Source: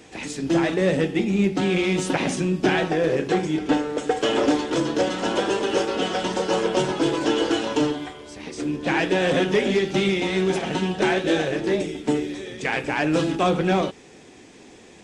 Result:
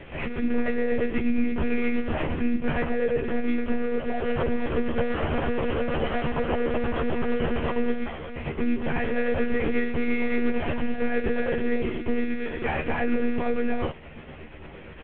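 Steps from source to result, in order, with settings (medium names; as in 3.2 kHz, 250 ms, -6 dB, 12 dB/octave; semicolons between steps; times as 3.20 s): CVSD coder 16 kbps; in parallel at -1 dB: compression 6:1, threshold -33 dBFS, peak gain reduction 16 dB; on the sum: peak limiter -17 dBFS, peak gain reduction 8.5 dB; tremolo 8.6 Hz, depth 32%; monotone LPC vocoder at 8 kHz 240 Hz; doubling 13 ms -4 dB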